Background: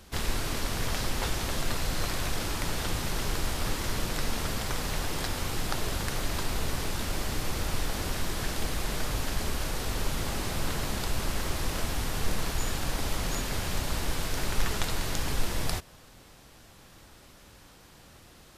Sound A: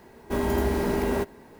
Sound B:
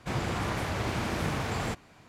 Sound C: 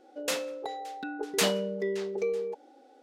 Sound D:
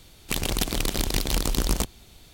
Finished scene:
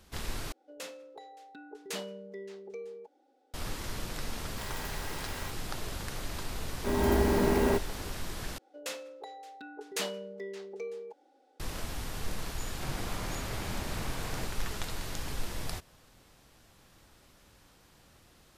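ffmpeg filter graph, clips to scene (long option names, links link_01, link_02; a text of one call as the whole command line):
ffmpeg -i bed.wav -i cue0.wav -i cue1.wav -i cue2.wav -filter_complex "[3:a]asplit=2[link_01][link_02];[1:a]asplit=2[link_03][link_04];[0:a]volume=-7dB[link_05];[link_03]highpass=1300[link_06];[link_04]dynaudnorm=framelen=260:gausssize=3:maxgain=9.5dB[link_07];[link_02]lowshelf=frequency=300:gain=-7[link_08];[2:a]highpass=41[link_09];[link_05]asplit=3[link_10][link_11][link_12];[link_10]atrim=end=0.524[link_13];[link_01]atrim=end=3.02,asetpts=PTS-STARTPTS,volume=-12.5dB[link_14];[link_11]atrim=start=3.536:end=8.584[link_15];[link_08]atrim=end=3.02,asetpts=PTS-STARTPTS,volume=-7.5dB[link_16];[link_12]atrim=start=11.596[link_17];[link_06]atrim=end=1.59,asetpts=PTS-STARTPTS,volume=-7dB,afade=type=in:duration=0.004:curve=hsin,afade=type=out:start_time=1.586:duration=0.004:curve=hsin,adelay=4270[link_18];[link_07]atrim=end=1.59,asetpts=PTS-STARTPTS,volume=-9.5dB,afade=type=in:duration=0.004:curve=hsin,afade=type=out:start_time=1.586:duration=0.004:curve=hsin,adelay=6540[link_19];[link_09]atrim=end=2.08,asetpts=PTS-STARTPTS,volume=-9.5dB,afade=type=in:duration=0.004:curve=hsin,afade=type=out:start_time=2.076:duration=0.004:curve=hsin,adelay=12730[link_20];[link_13][link_14]acrossfade=duration=0.004:curve1=hsin:curve2=hsin[link_21];[link_21][link_15]acrossfade=duration=0.004:curve1=hsin:curve2=hsin[link_22];[link_22][link_16]acrossfade=duration=0.004:curve1=hsin:curve2=hsin[link_23];[link_23][link_17]acrossfade=duration=0.004:curve1=hsin:curve2=hsin[link_24];[link_24][link_18][link_19][link_20]amix=inputs=4:normalize=0" out.wav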